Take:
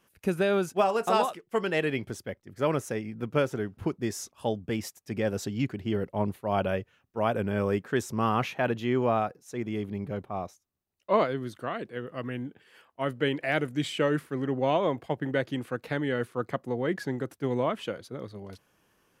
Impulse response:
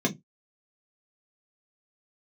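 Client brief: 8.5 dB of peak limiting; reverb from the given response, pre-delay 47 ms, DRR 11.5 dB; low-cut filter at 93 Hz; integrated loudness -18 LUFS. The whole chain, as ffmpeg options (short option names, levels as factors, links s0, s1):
-filter_complex "[0:a]highpass=93,alimiter=limit=0.112:level=0:latency=1,asplit=2[s0][s1];[1:a]atrim=start_sample=2205,adelay=47[s2];[s1][s2]afir=irnorm=-1:irlink=0,volume=0.0841[s3];[s0][s3]amix=inputs=2:normalize=0,volume=4.22"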